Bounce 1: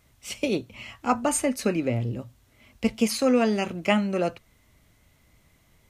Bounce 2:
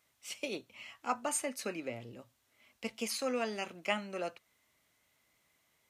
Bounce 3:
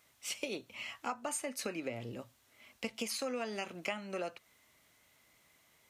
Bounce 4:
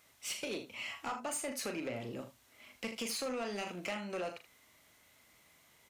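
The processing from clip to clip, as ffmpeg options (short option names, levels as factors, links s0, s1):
-af "highpass=f=720:p=1,volume=0.422"
-af "acompressor=threshold=0.00891:ratio=6,volume=2"
-af "aecho=1:1:39|79:0.355|0.224,asoftclip=type=tanh:threshold=0.02,volume=1.26"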